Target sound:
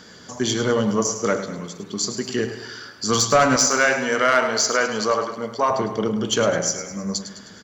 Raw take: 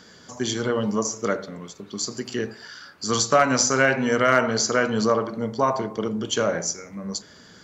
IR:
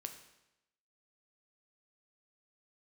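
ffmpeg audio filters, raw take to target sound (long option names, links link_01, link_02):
-filter_complex "[0:a]asettb=1/sr,asplit=3[link_01][link_02][link_03];[link_01]atrim=end=3.564[link_04];[link_02]atrim=start=3.56:end=5.71,asetpts=PTS-STARTPTS,afade=type=in:duration=0.004:curve=qsin,afade=type=out:start_time=2.146:duration=0.004:curve=qsin,highpass=frequency=590:poles=1[link_05];[link_03]atrim=start=5.706[link_06];[link_04][link_05]acrossfade=duration=0.004:curve1=hsin:curve2=qsin[link_07];[link_07][link_06]acrossfade=duration=0.004:curve1=qsin:curve2=hsin,asoftclip=type=tanh:threshold=-12dB,aecho=1:1:104|208|312|416|520|624:0.282|0.149|0.0792|0.042|0.0222|0.0118,volume=4dB"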